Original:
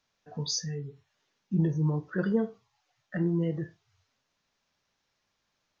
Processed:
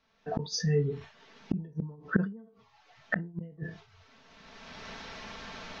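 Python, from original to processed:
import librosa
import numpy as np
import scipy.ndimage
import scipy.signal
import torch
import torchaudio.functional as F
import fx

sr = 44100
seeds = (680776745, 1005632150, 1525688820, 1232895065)

y = fx.recorder_agc(x, sr, target_db=-23.5, rise_db_per_s=23.0, max_gain_db=30)
y = fx.air_absorb(y, sr, metres=180.0)
y = y + 0.54 * np.pad(y, (int(4.5 * sr / 1000.0), 0))[:len(y)]
y = fx.gate_flip(y, sr, shuts_db=-22.0, range_db=-35)
y = fx.dynamic_eq(y, sr, hz=200.0, q=2.4, threshold_db=-56.0, ratio=4.0, max_db=7, at=(1.6, 3.63))
y = fx.sustainer(y, sr, db_per_s=130.0)
y = y * librosa.db_to_amplitude(6.0)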